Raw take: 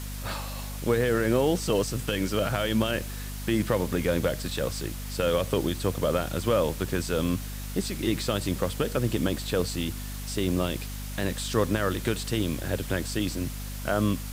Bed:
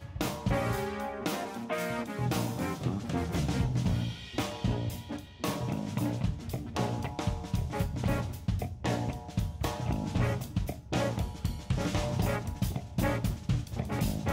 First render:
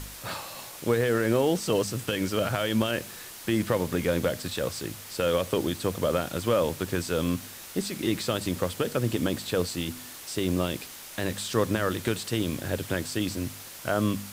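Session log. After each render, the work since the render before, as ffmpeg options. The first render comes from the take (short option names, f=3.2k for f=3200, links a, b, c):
-af "bandreject=f=50:t=h:w=4,bandreject=f=100:t=h:w=4,bandreject=f=150:t=h:w=4,bandreject=f=200:t=h:w=4,bandreject=f=250:t=h:w=4"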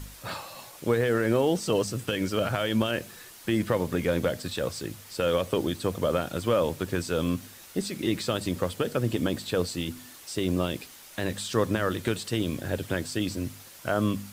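-af "afftdn=nr=6:nf=-43"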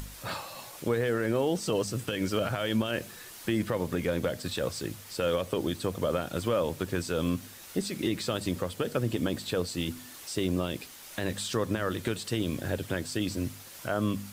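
-af "acompressor=mode=upward:threshold=-40dB:ratio=2.5,alimiter=limit=-17.5dB:level=0:latency=1:release=228"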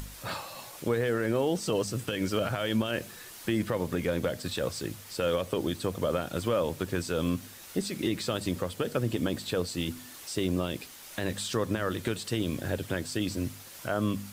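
-af anull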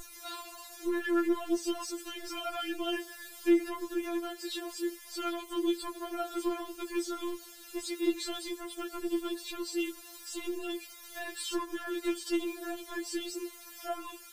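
-af "asoftclip=type=tanh:threshold=-20.5dB,afftfilt=real='re*4*eq(mod(b,16),0)':imag='im*4*eq(mod(b,16),0)':win_size=2048:overlap=0.75"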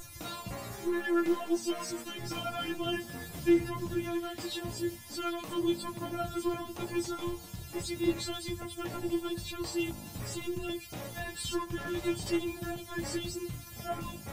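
-filter_complex "[1:a]volume=-12.5dB[a];[0:a][a]amix=inputs=2:normalize=0"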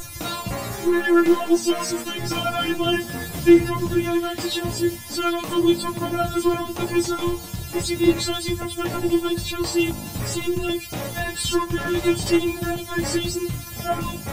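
-af "volume=12dB"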